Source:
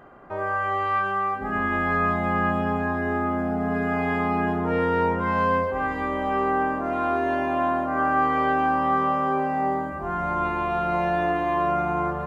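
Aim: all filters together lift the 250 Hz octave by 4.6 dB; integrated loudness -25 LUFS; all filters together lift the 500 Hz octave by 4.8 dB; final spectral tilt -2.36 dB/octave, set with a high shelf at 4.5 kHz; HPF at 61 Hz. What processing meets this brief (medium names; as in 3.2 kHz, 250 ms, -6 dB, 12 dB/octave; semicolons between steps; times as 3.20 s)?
high-pass 61 Hz; peaking EQ 250 Hz +4 dB; peaking EQ 500 Hz +5.5 dB; treble shelf 4.5 kHz -4.5 dB; trim -3.5 dB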